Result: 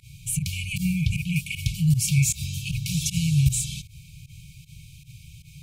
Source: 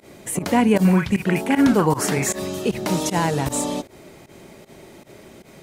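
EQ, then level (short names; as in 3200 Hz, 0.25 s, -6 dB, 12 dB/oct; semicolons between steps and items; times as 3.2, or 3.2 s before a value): brick-wall FIR band-stop 160–2200 Hz; low shelf 460 Hz +10.5 dB; 0.0 dB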